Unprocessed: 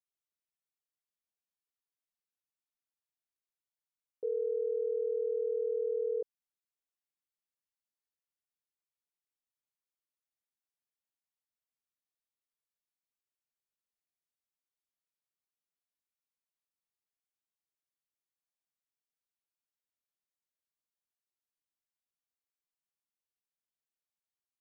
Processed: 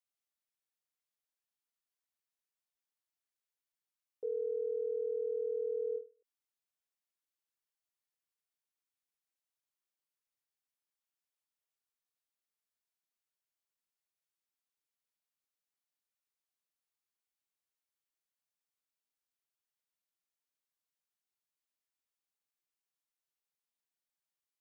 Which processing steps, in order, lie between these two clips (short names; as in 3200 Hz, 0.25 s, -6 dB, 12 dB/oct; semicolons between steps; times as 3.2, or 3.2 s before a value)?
low shelf 370 Hz -7.5 dB; ending taper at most 210 dB/s